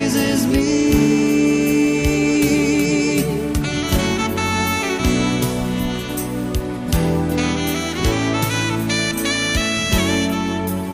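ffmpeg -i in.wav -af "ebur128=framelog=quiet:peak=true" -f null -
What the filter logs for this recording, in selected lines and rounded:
Integrated loudness:
  I:         -18.2 LUFS
  Threshold: -28.2 LUFS
Loudness range:
  LRA:         4.0 LU
  Threshold: -38.6 LUFS
  LRA low:   -20.2 LUFS
  LRA high:  -16.3 LUFS
True peak:
  Peak:       -5.5 dBFS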